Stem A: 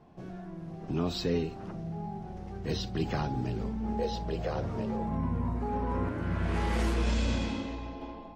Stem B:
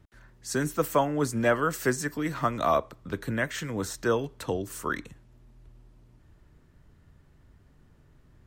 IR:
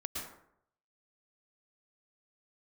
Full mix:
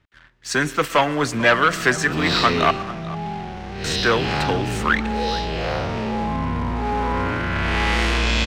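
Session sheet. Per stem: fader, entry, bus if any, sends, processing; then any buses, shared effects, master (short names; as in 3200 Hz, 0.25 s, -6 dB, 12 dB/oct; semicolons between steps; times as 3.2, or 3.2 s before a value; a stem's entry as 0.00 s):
+0.5 dB, 1.20 s, no send, no echo send, time blur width 0.162 s; transient shaper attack -5 dB, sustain +4 dB
-4.0 dB, 0.00 s, muted 2.71–3.84, send -19.5 dB, echo send -19 dB, high shelf 7300 Hz -11 dB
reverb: on, RT60 0.70 s, pre-delay 0.103 s
echo: echo 0.44 s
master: sample leveller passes 2; bell 2700 Hz +14 dB 2.8 oct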